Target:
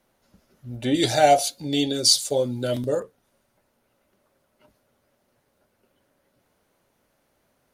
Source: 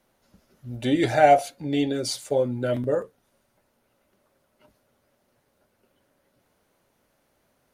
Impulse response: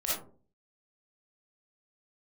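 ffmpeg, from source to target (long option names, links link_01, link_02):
-filter_complex "[0:a]asettb=1/sr,asplit=3[link_01][link_02][link_03];[link_01]atrim=end=0.944[link_04];[link_02]atrim=start=0.94:end=3,asetpts=PTS-STARTPTS,afade=type=in:duration=0.004:curve=qsin,afade=type=out:start_time=2.056:duration=0.004:curve=qsin,highshelf=frequency=2900:width_type=q:width=1.5:gain=11[link_05];[link_03]atrim=start=2.996[link_06];[link_04][link_05]acrossfade=duration=0.004:curve1=hsin:curve2=qsin[link_07];[link_07][link_06]acrossfade=duration=0.004:curve1=qsin:curve2=hsin"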